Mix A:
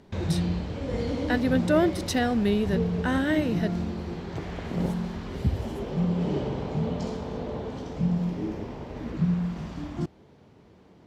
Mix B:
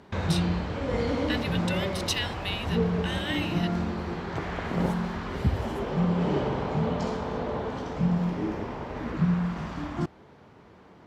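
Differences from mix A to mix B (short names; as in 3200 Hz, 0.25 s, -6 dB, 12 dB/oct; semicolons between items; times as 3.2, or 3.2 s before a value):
speech: add resonant high-pass 2700 Hz, resonance Q 2.7; background: add bell 1300 Hz +9 dB 1.9 oct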